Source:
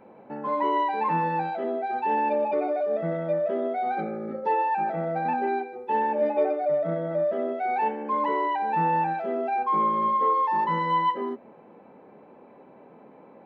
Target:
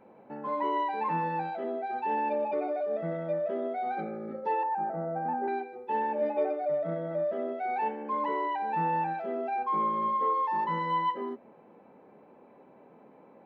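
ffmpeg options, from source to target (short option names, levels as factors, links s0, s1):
-filter_complex "[0:a]asettb=1/sr,asplit=3[s0][s1][s2];[s0]atrim=end=4.634[s3];[s1]atrim=start=4.63:end=5.48,asetpts=PTS-STARTPTS,afade=t=in:d=0.004:c=qsin,afade=t=out:st=0.846:d=0.004:c=qsin,lowpass=f=1500:w=0.5412,lowpass=f=1500:w=1.3066[s4];[s2]atrim=start=5.476[s5];[s3][s4]acrossfade=d=0.004:c1=hsin:c2=qsin[s6];[s6][s5]acrossfade=d=0.004:c1=qsin:c2=hsin,volume=0.562"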